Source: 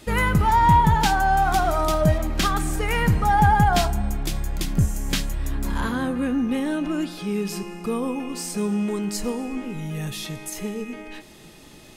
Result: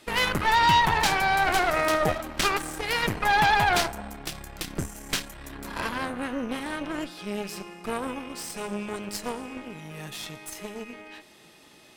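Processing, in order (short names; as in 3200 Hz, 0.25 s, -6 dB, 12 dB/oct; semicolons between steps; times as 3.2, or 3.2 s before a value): HPF 1200 Hz 6 dB/oct; tilt -2 dB/oct; notch 6700 Hz, Q 16; added harmonics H 6 -9 dB, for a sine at -12.5 dBFS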